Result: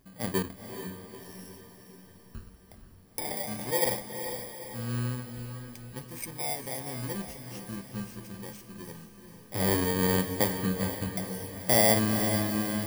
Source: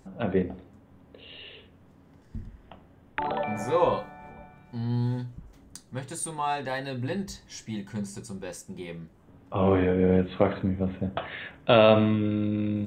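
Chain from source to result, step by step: FFT order left unsorted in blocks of 32 samples; in parallel at -6 dB: backlash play -27.5 dBFS; on the sum: diffused feedback echo 0.459 s, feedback 54%, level -8 dB; gain -7.5 dB

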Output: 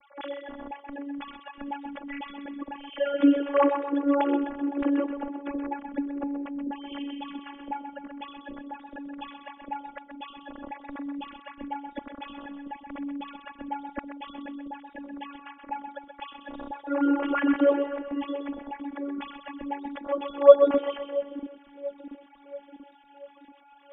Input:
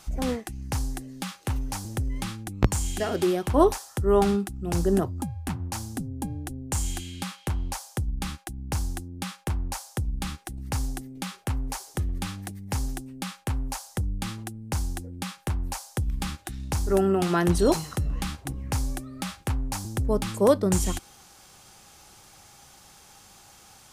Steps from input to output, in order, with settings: sine-wave speech; split-band echo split 430 Hz, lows 0.685 s, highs 0.128 s, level -8 dB; robotiser 283 Hz; gain +2 dB

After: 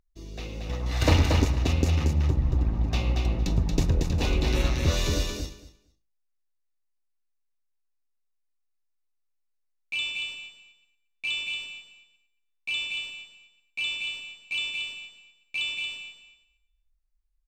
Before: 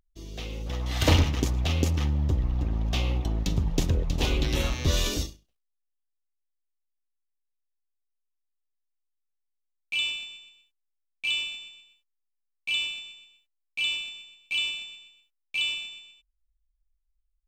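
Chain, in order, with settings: high shelf 7600 Hz -7 dB; notch 3200 Hz, Q 6.8; feedback echo 0.23 s, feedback 15%, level -4 dB

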